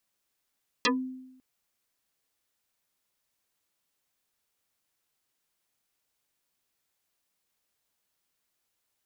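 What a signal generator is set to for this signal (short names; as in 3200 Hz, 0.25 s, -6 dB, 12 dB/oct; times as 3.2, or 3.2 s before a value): FM tone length 0.55 s, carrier 258 Hz, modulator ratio 2.87, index 8.9, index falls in 0.15 s exponential, decay 0.90 s, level -19.5 dB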